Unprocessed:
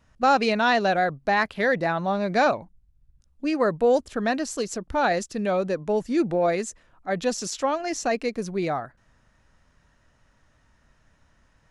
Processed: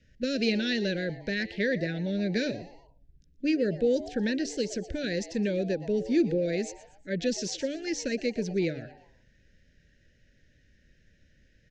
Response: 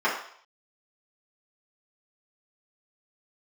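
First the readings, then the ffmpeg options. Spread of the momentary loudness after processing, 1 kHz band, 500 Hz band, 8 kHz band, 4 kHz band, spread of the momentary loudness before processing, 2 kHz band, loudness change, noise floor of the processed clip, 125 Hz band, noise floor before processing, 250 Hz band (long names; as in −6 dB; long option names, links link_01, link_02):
7 LU, −26.0 dB, −5.5 dB, −5.0 dB, −1.5 dB, 9 LU, −7.5 dB, −5.0 dB, −64 dBFS, −0.5 dB, −64 dBFS, −0.5 dB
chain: -filter_complex "[0:a]lowpass=frequency=6100:width=0.5412,lowpass=frequency=6100:width=1.3066,bandreject=frequency=145.1:width_type=h:width=4,bandreject=frequency=290.2:width_type=h:width=4,bandreject=frequency=435.3:width_type=h:width=4,acrossover=split=380|3000[link_01][link_02][link_03];[link_02]acompressor=threshold=-31dB:ratio=3[link_04];[link_01][link_04][link_03]amix=inputs=3:normalize=0,asuperstop=centerf=950:order=12:qfactor=0.97,asplit=2[link_05][link_06];[link_06]asplit=3[link_07][link_08][link_09];[link_07]adelay=119,afreqshift=130,volume=-17dB[link_10];[link_08]adelay=238,afreqshift=260,volume=-25dB[link_11];[link_09]adelay=357,afreqshift=390,volume=-32.9dB[link_12];[link_10][link_11][link_12]amix=inputs=3:normalize=0[link_13];[link_05][link_13]amix=inputs=2:normalize=0"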